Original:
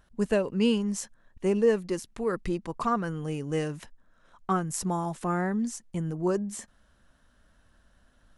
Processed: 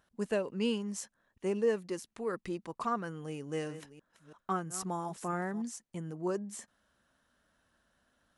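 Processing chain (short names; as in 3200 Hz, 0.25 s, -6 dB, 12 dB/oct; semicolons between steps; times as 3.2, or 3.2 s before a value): 3.33–5.62 reverse delay 0.333 s, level -13 dB; HPF 220 Hz 6 dB/oct; gain -5.5 dB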